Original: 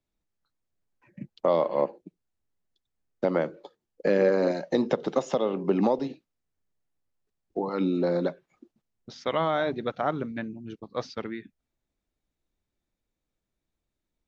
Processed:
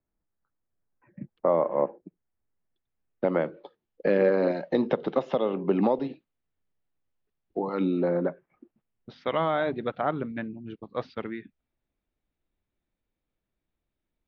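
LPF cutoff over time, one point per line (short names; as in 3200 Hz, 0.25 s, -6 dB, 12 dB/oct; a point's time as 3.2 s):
LPF 24 dB/oct
2.02 s 1900 Hz
3.64 s 3700 Hz
7.93 s 3700 Hz
8.22 s 1900 Hz
9.12 s 3500 Hz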